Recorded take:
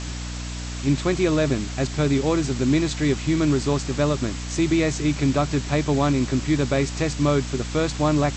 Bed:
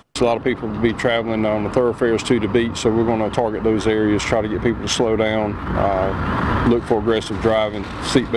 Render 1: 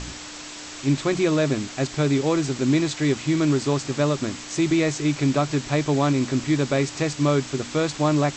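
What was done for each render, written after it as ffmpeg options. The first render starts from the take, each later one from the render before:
-af "bandreject=f=60:t=h:w=4,bandreject=f=120:t=h:w=4,bandreject=f=180:t=h:w=4,bandreject=f=240:t=h:w=4"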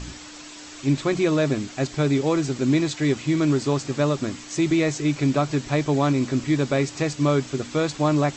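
-af "afftdn=nr=6:nf=-38"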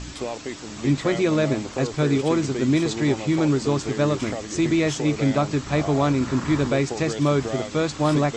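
-filter_complex "[1:a]volume=-13.5dB[a];[0:a][a]amix=inputs=2:normalize=0"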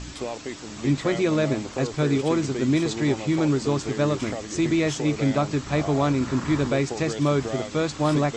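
-af "volume=-1.5dB"

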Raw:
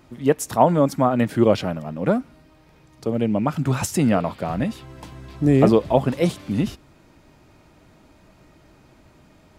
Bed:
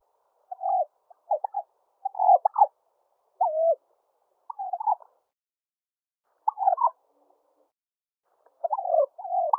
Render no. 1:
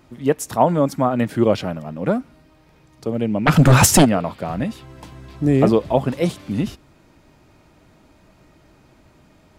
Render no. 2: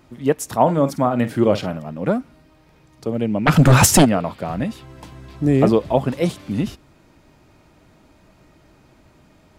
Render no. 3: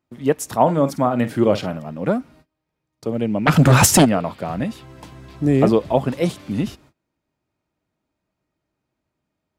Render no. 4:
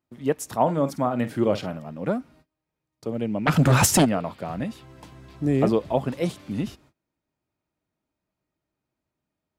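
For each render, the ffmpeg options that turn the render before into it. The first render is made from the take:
-filter_complex "[0:a]asplit=3[a][b][c];[a]afade=t=out:st=3.46:d=0.02[d];[b]aeval=exprs='0.501*sin(PI/2*3.55*val(0)/0.501)':c=same,afade=t=in:st=3.46:d=0.02,afade=t=out:st=4.04:d=0.02[e];[c]afade=t=in:st=4.04:d=0.02[f];[d][e][f]amix=inputs=3:normalize=0"
-filter_complex "[0:a]asettb=1/sr,asplit=3[a][b][c];[a]atrim=end=0.614[d];[b]atrim=start=0.61:end=1.77,asetpts=PTS-STARTPTS,afade=t=in:d=0.004:c=qsin,afade=t=out:st=1.156:d=0.004:c=qsin,asplit=2[e][f];[f]adelay=49,volume=-13dB[g];[e][g]amix=inputs=2:normalize=0,atrim=end_sample=51156[h];[c]atrim=start=1.766[i];[d][h]acrossfade=d=0.004:c1=hsin:c2=qsin[j];[j][i]acrossfade=d=0.004:c1=qsin:c2=hsin"
-af "highpass=f=62:p=1,agate=range=-25dB:threshold=-47dB:ratio=16:detection=peak"
-af "volume=-5.5dB"

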